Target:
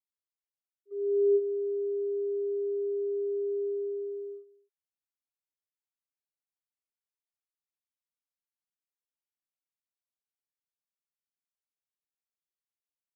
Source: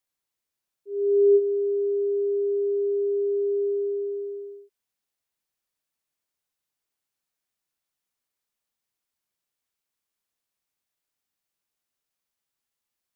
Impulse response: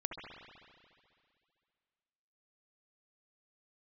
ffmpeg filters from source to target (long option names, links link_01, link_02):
-af "agate=range=-13dB:threshold=-35dB:ratio=16:detection=peak,volume=-6.5dB"